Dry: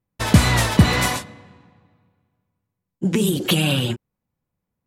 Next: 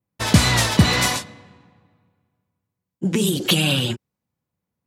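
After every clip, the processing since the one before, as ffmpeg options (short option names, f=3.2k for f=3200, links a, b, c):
-af "highpass=67,adynamicequalizer=threshold=0.0112:dfrequency=5100:dqfactor=0.75:tfrequency=5100:tqfactor=0.75:attack=5:release=100:ratio=0.375:range=3:mode=boostabove:tftype=bell,volume=-1dB"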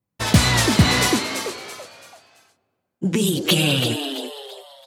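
-filter_complex "[0:a]asplit=5[a][b][c][d][e];[b]adelay=334,afreqshift=140,volume=-8dB[f];[c]adelay=668,afreqshift=280,volume=-17.1dB[g];[d]adelay=1002,afreqshift=420,volume=-26.2dB[h];[e]adelay=1336,afreqshift=560,volume=-35.4dB[i];[a][f][g][h][i]amix=inputs=5:normalize=0,aeval=exprs='0.562*(abs(mod(val(0)/0.562+3,4)-2)-1)':c=same"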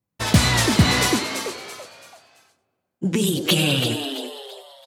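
-af "aecho=1:1:94:0.141,volume=-1dB"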